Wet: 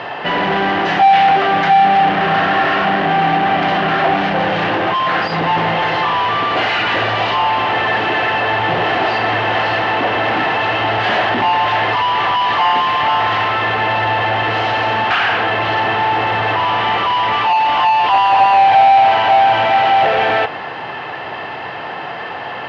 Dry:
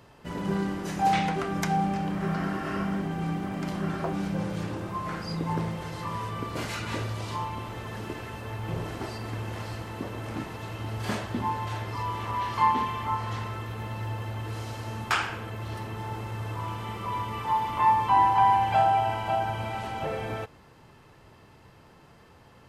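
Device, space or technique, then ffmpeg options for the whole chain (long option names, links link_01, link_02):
overdrive pedal into a guitar cabinet: -filter_complex "[0:a]asplit=2[link_01][link_02];[link_02]highpass=frequency=720:poles=1,volume=37dB,asoftclip=type=tanh:threshold=-10.5dB[link_03];[link_01][link_03]amix=inputs=2:normalize=0,lowpass=frequency=2300:poles=1,volume=-6dB,highpass=89,equalizer=frequency=210:width_type=q:width=4:gain=-4,equalizer=frequency=740:width_type=q:width=4:gain=10,equalizer=frequency=1800:width_type=q:width=4:gain=7,equalizer=frequency=2900:width_type=q:width=4:gain=7,lowpass=frequency=4400:width=0.5412,lowpass=frequency=4400:width=1.3066"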